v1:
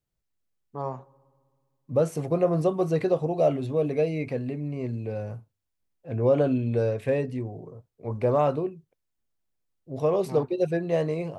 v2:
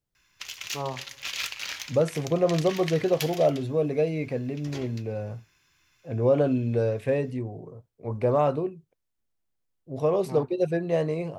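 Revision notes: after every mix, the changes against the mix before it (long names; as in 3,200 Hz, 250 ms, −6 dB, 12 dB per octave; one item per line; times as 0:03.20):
background: unmuted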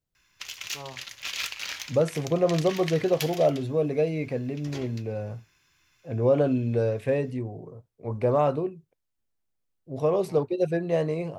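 first voice −9.0 dB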